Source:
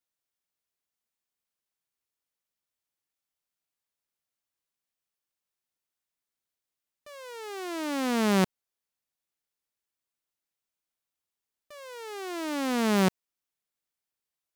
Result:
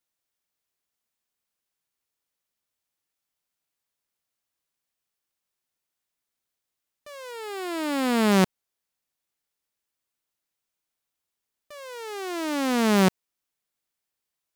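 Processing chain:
0:07.31–0:08.32: notch filter 6,000 Hz, Q 5.6
level +4 dB

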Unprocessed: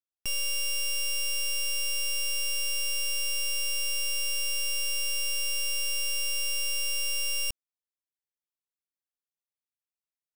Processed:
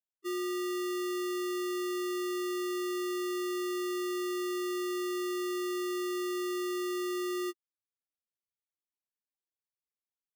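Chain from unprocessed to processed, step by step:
low-shelf EQ 190 Hz −10 dB
spectral peaks only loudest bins 1
decimation without filtering 28×
level +7.5 dB

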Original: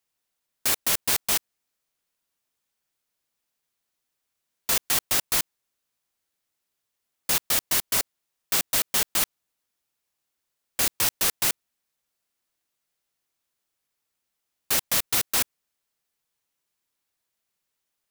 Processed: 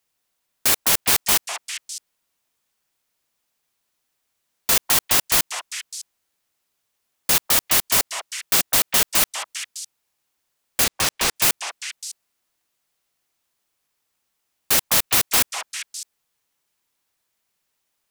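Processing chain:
0:10.84–0:11.36: running median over 3 samples
echo through a band-pass that steps 202 ms, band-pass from 910 Hz, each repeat 1.4 octaves, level −3 dB
level +5.5 dB

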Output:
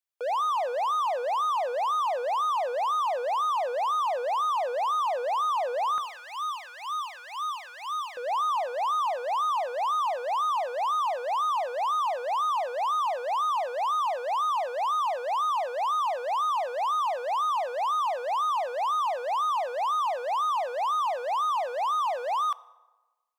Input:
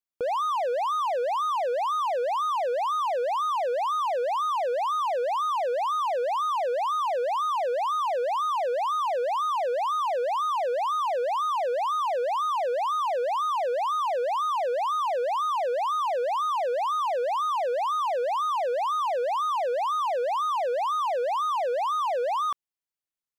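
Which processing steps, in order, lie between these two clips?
high-pass filter 540 Hz 24 dB per octave, from 0:05.98 1,300 Hz, from 0:08.17 620 Hz
feedback delay network reverb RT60 1.2 s, low-frequency decay 1.5×, high-frequency decay 0.65×, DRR 18.5 dB

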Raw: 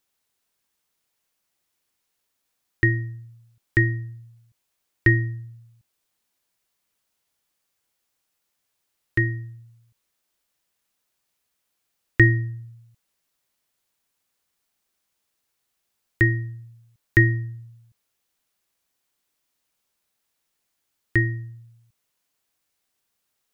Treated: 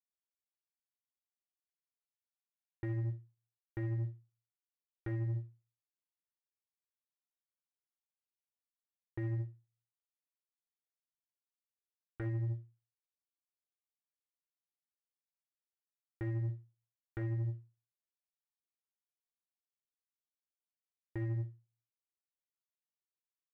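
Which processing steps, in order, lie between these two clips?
wavefolder on the positive side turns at −10.5 dBFS
noise gate −44 dBFS, range −33 dB
low-pass filter 1,100 Hz 24 dB per octave
low-shelf EQ 280 Hz −6.5 dB
reversed playback
downward compressor, threshold −34 dBFS, peak gain reduction 16 dB
reversed playback
brickwall limiter −37 dBFS, peak gain reduction 11 dB
leveller curve on the samples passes 1
every ending faded ahead of time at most 180 dB per second
level +5.5 dB

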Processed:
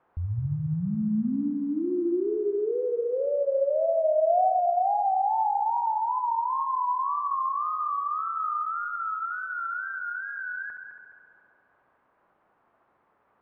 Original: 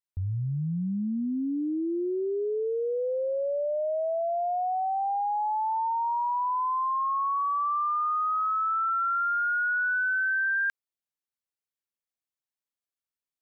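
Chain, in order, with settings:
background noise blue −45 dBFS
dynamic equaliser 690 Hz, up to +6 dB, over −42 dBFS, Q 4.6
log-companded quantiser 8 bits
tape wow and flutter 110 cents
low-pass filter 1,200 Hz 24 dB per octave
echo machine with several playback heads 70 ms, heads first and third, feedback 58%, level −9.5 dB

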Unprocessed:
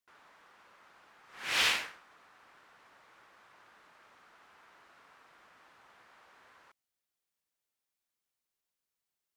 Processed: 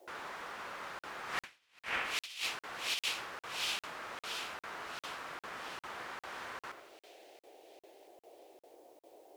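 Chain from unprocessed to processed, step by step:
on a send: echo with a time of its own for lows and highs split 2,500 Hz, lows 86 ms, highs 678 ms, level −11 dB
on the sum: noise in a band 330–770 Hz −74 dBFS
compressor whose output falls as the input rises −48 dBFS, ratio −0.5
regular buffer underruns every 0.40 s, samples 2,048, zero, from 0:00.99
level +8 dB

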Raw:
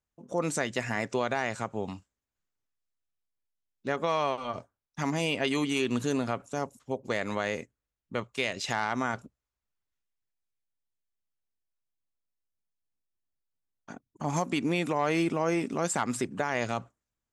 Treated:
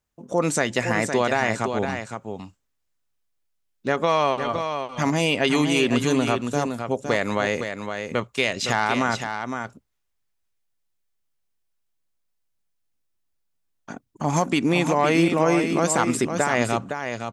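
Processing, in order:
single-tap delay 512 ms −7 dB
level +7.5 dB

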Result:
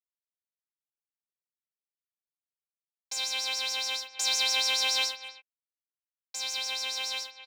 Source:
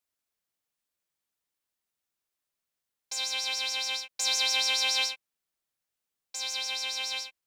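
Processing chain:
log-companded quantiser 6 bits
far-end echo of a speakerphone 260 ms, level −12 dB

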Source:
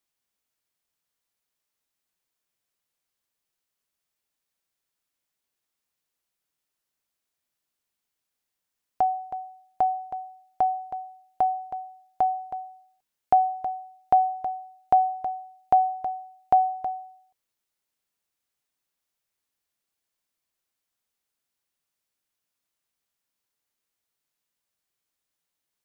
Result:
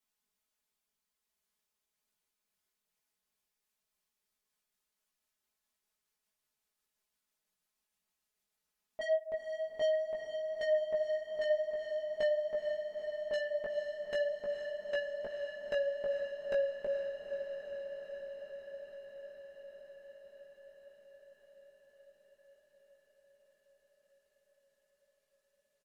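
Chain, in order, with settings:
pitch glide at a constant tempo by −8 semitones starting unshifted
comb filter 4.7 ms, depth 78%
soft clipping −25 dBFS, distortion −6 dB
multi-voice chorus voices 4, 0.42 Hz, delay 18 ms, depth 3.4 ms
on a send: feedback delay with all-pass diffusion 467 ms, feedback 78%, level −7.5 dB
on the sum: level −1.5 dB

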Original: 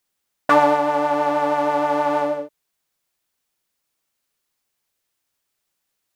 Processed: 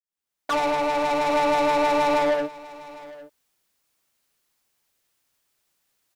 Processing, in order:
fade in at the beginning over 1.24 s
in parallel at 0 dB: brickwall limiter −20 dBFS, peak gain reduction 11 dB
on the sum: soft clipping −24 dBFS, distortion −6 dB
single-tap delay 807 ms −12 dB
expander for the loud parts 1.5 to 1, over −38 dBFS
level +4.5 dB

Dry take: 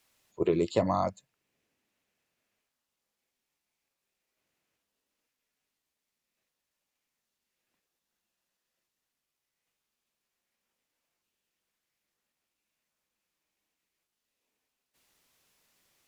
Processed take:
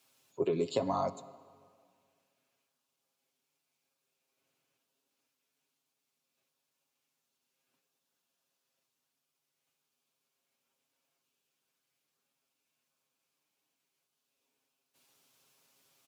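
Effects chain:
high-pass filter 120 Hz 12 dB per octave
parametric band 1,900 Hz −8 dB 0.29 octaves
comb filter 7.4 ms, depth 65%
downward compressor, threshold −27 dBFS, peak gain reduction 9 dB
convolution reverb RT60 2.0 s, pre-delay 47 ms, DRR 17 dB

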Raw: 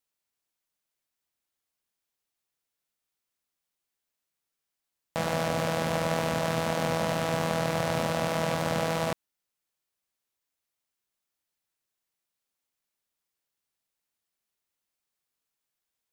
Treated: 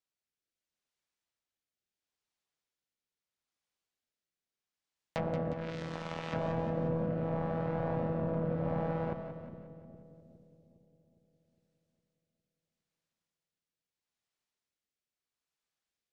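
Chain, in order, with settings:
rotating-speaker cabinet horn 0.75 Hz
0:05.53–0:06.33: power curve on the samples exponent 2
low-pass filter 7,000 Hz 12 dB per octave
harmonic generator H 5 −33 dB, 7 −23 dB, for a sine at −14.5 dBFS
soft clipping −27 dBFS, distortion −10 dB
treble cut that deepens with the level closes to 940 Hz, closed at −32 dBFS
on a send: echo with a time of its own for lows and highs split 490 Hz, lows 409 ms, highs 179 ms, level −8.5 dB
on the sum: level +2 dB

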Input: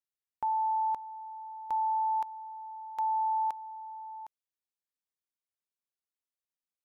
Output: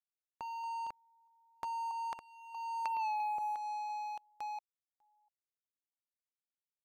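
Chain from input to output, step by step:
delay that plays each chunk backwards 666 ms, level −8 dB
source passing by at 0:03.03, 15 m/s, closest 1.2 metres
treble cut that deepens with the level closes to 570 Hz, closed at −36 dBFS
parametric band 920 Hz −7 dB 0.23 octaves
leveller curve on the samples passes 3
downward compressor 6 to 1, threshold −50 dBFS, peak gain reduction 11.5 dB
level +14.5 dB

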